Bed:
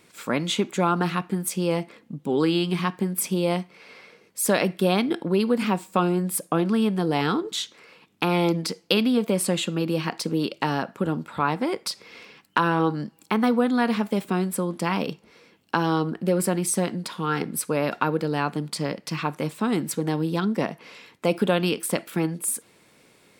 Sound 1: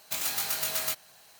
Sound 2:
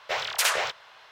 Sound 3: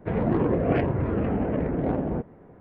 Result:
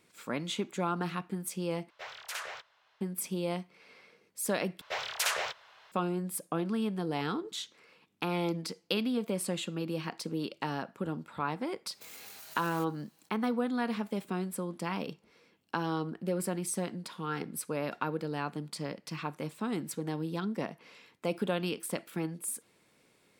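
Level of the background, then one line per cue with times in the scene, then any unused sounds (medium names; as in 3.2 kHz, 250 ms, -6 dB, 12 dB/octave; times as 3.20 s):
bed -10 dB
1.90 s: replace with 2 -17 dB + dynamic bell 1.5 kHz, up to +4 dB, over -35 dBFS, Q 1.1
4.81 s: replace with 2 -6.5 dB
11.90 s: add 1 -14 dB + peak limiter -24.5 dBFS
not used: 3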